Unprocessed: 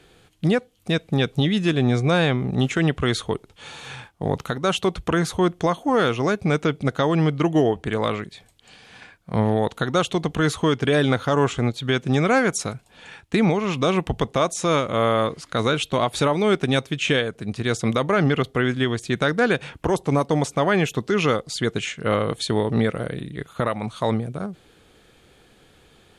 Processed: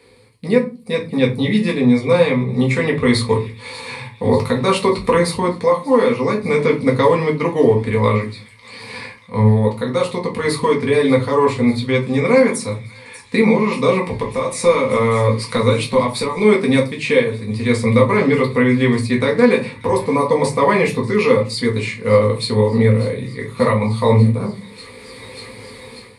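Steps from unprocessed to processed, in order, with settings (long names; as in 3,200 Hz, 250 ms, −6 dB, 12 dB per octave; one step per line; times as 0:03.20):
high-pass filter 87 Hz 12 dB per octave
0:14.08–0:16.37: downward compressor, threshold −24 dBFS, peak gain reduction 9.5 dB
EQ curve with evenly spaced ripples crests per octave 0.93, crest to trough 14 dB
delay with a high-pass on its return 590 ms, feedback 73%, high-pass 2,500 Hz, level −17 dB
rectangular room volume 130 cubic metres, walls furnished, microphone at 1.8 metres
automatic gain control gain up to 11.5 dB
level −1 dB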